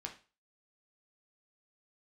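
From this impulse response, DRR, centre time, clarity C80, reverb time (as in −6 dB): 1.5 dB, 13 ms, 17.0 dB, 0.35 s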